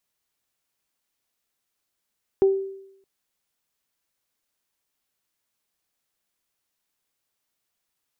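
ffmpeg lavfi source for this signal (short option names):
-f lavfi -i "aevalsrc='0.251*pow(10,-3*t/0.78)*sin(2*PI*388*t)+0.0266*pow(10,-3*t/0.27)*sin(2*PI*776*t)':d=0.62:s=44100"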